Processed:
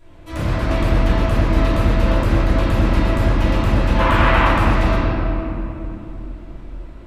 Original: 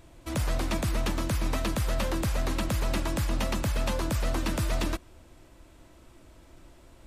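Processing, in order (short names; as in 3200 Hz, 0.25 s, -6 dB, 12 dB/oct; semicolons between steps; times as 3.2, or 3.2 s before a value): 3.95–4.43 band shelf 1600 Hz +13 dB 2.4 oct; reverb RT60 3.1 s, pre-delay 3 ms, DRR -16.5 dB; gain -6 dB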